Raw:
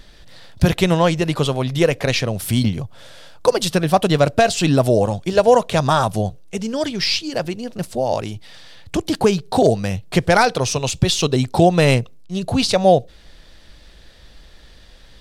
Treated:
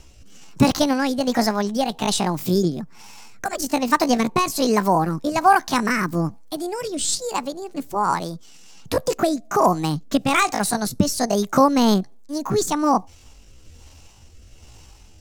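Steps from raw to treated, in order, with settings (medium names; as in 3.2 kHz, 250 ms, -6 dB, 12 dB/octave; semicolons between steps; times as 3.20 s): pitch shift +8 st; rotary cabinet horn 1.2 Hz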